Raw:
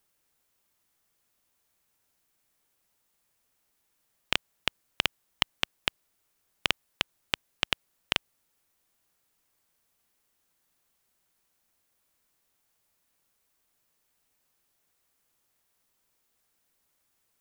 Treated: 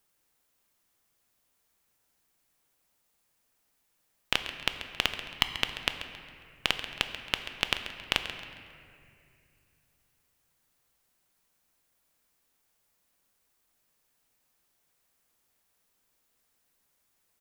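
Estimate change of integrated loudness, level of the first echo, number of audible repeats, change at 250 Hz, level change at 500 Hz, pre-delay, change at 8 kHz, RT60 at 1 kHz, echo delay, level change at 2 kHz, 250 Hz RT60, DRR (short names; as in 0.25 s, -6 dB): +0.5 dB, -13.0 dB, 2, +1.0 dB, +1.0 dB, 4 ms, +0.5 dB, 2.2 s, 0.136 s, +1.0 dB, 3.2 s, 6.0 dB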